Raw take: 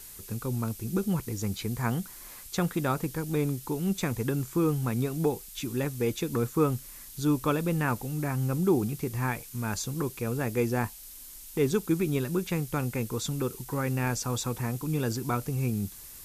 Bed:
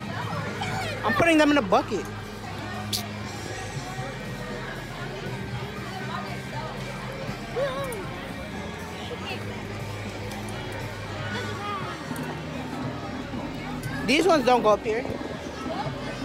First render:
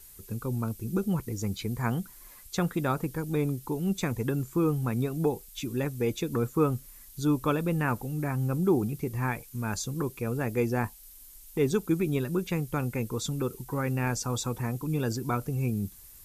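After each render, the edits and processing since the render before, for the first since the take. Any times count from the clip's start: noise reduction 8 dB, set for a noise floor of -46 dBFS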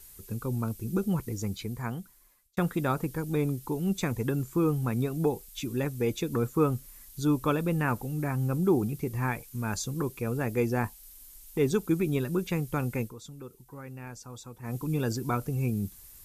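1.29–2.57 s: fade out; 13.01–14.75 s: dip -13.5 dB, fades 0.13 s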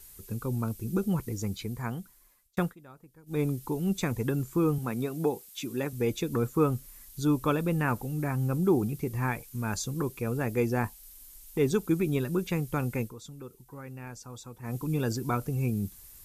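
2.61–3.40 s: dip -23 dB, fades 0.14 s; 4.78–5.93 s: Bessel high-pass 190 Hz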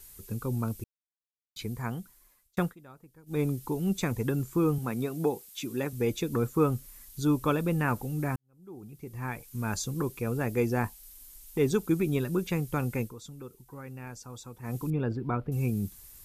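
0.84–1.56 s: mute; 8.36–9.61 s: fade in quadratic; 14.90–15.52 s: distance through air 460 m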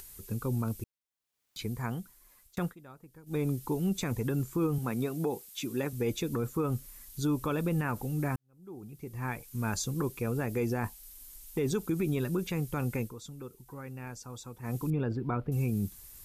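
upward compressor, threshold -46 dBFS; peak limiter -21.5 dBFS, peak gain reduction 9 dB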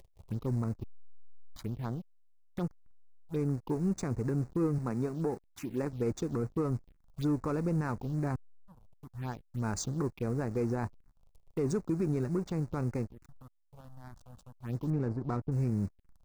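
hysteresis with a dead band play -34 dBFS; touch-sensitive phaser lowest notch 220 Hz, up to 3.2 kHz, full sweep at -29.5 dBFS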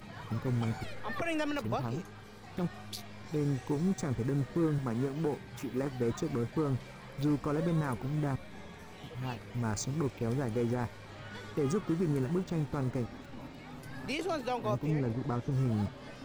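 add bed -14.5 dB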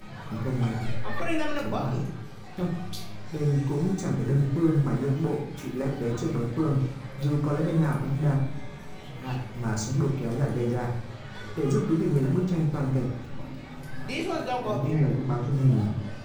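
simulated room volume 120 m³, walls mixed, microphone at 1.1 m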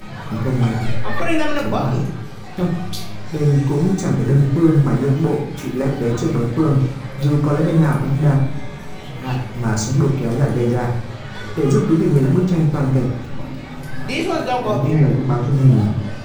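trim +9.5 dB

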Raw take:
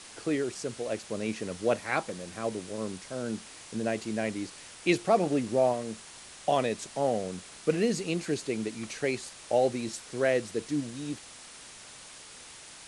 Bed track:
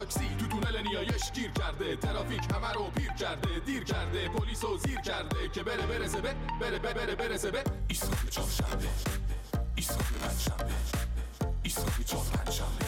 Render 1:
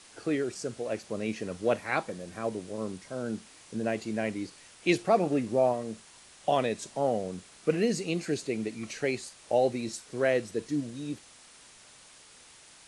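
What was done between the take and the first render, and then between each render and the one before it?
noise print and reduce 6 dB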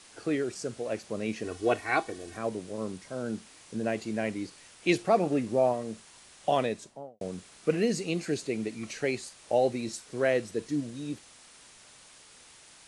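1.44–2.37 s: comb 2.7 ms, depth 77%; 6.59–7.21 s: studio fade out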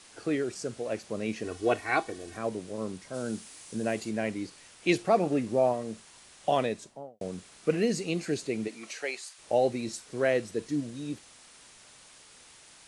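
3.13–4.09 s: treble shelf 5.2 kHz -> 8 kHz +11 dB; 8.67–9.37 s: high-pass 280 Hz -> 1.1 kHz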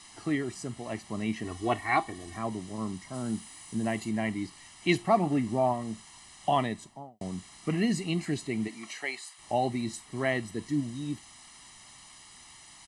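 comb 1 ms, depth 82%; dynamic bell 5.8 kHz, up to -6 dB, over -52 dBFS, Q 1.3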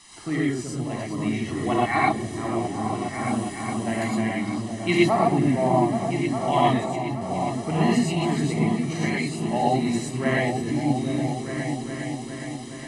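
delay with an opening low-pass 411 ms, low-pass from 200 Hz, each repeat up 2 oct, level -3 dB; gated-style reverb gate 140 ms rising, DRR -4 dB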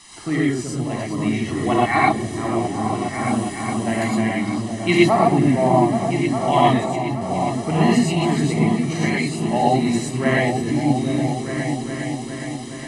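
trim +4.5 dB

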